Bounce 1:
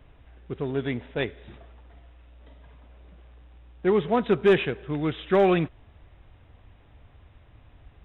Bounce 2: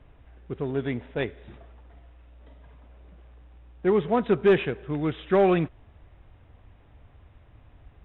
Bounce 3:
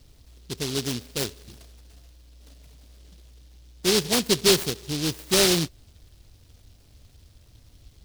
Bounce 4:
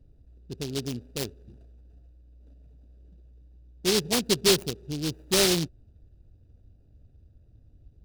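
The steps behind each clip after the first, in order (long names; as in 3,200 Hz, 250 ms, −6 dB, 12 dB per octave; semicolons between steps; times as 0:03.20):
low-pass filter 2,600 Hz 6 dB per octave
short delay modulated by noise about 4,100 Hz, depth 0.31 ms
adaptive Wiener filter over 41 samples; level −2 dB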